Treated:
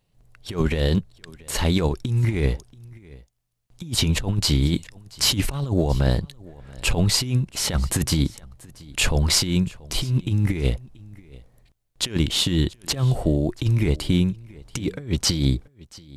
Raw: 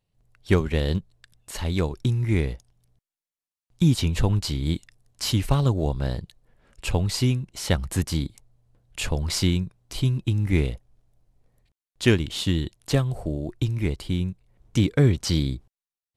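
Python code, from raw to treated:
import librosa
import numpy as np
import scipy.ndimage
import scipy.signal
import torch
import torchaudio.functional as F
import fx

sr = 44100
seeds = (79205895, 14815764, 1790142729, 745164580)

p1 = fx.peak_eq(x, sr, hz=89.0, db=-6.5, octaves=0.27)
p2 = fx.over_compress(p1, sr, threshold_db=-25.0, ratio=-0.5)
p3 = p2 + fx.echo_single(p2, sr, ms=682, db=-22.5, dry=0)
y = F.gain(torch.from_numpy(p3), 5.5).numpy()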